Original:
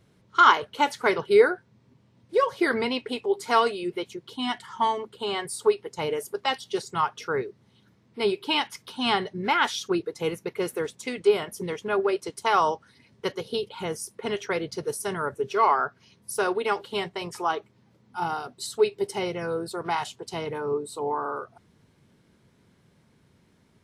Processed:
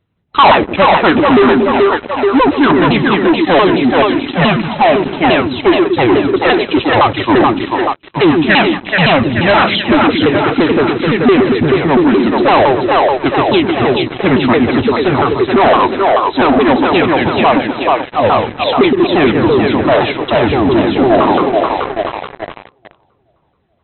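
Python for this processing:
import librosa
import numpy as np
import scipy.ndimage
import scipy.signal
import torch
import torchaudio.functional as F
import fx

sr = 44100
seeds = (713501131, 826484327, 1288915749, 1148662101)

p1 = fx.pitch_ramps(x, sr, semitones=-9.5, every_ms=171)
p2 = fx.echo_split(p1, sr, split_hz=360.0, low_ms=116, high_ms=431, feedback_pct=52, wet_db=-5.0)
p3 = fx.leveller(p2, sr, passes=5)
p4 = fx.rider(p3, sr, range_db=10, speed_s=2.0)
p5 = p3 + F.gain(torch.from_numpy(p4), 1.0).numpy()
p6 = fx.brickwall_lowpass(p5, sr, high_hz=4100.0)
y = F.gain(torch.from_numpy(p6), -4.5).numpy()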